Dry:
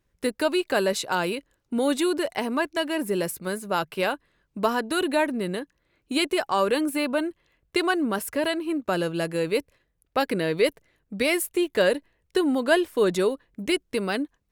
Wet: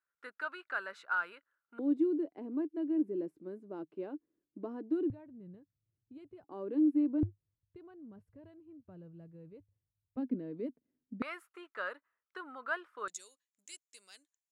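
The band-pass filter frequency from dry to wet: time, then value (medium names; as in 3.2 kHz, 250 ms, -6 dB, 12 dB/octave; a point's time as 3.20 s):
band-pass filter, Q 7.7
1.4 kHz
from 1.79 s 310 Hz
from 5.10 s 110 Hz
from 6.44 s 300 Hz
from 7.23 s 100 Hz
from 10.17 s 250 Hz
from 11.22 s 1.3 kHz
from 13.08 s 7 kHz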